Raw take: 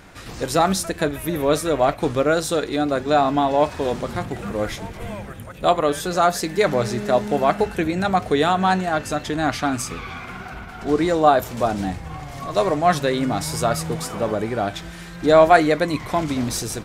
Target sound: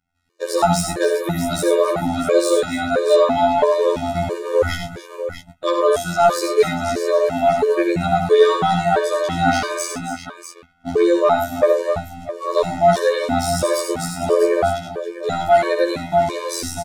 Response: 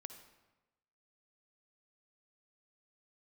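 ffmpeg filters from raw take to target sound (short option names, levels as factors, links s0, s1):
-filter_complex "[0:a]asettb=1/sr,asplit=3[s0][s1][s2];[s0]atrim=end=11.514[s3];[s1]atrim=start=11.51:end=12.53,asetpts=PTS-STARTPTS,afade=t=in:d=0.004:c=qsin,afade=t=out:st=1.016:d=0.004:c=qsin,equalizer=f=530:t=o:w=0.86:g=11[s4];[s2]atrim=start=12.526[s5];[s3][s4]acrossfade=d=0.004:c1=hsin:c2=qsin[s6];[s6][s5]acrossfade=d=0.004:c1=qsin:c2=hsin,agate=range=0.0224:threshold=0.0398:ratio=16:detection=peak,dynaudnorm=f=170:g=7:m=2.66,afftfilt=real='hypot(re,im)*cos(PI*b)':imag='0':win_size=2048:overlap=0.75,asoftclip=type=tanh:threshold=0.531,asplit=2[s7][s8];[s8]aecho=0:1:67|95|127|271|304|646:0.447|0.398|0.126|0.188|0.119|0.316[s9];[s7][s9]amix=inputs=2:normalize=0,afftfilt=real='re*gt(sin(2*PI*1.5*pts/sr)*(1-2*mod(floor(b*sr/1024/310),2)),0)':imag='im*gt(sin(2*PI*1.5*pts/sr)*(1-2*mod(floor(b*sr/1024/310),2)),0)':win_size=1024:overlap=0.75,volume=1.68"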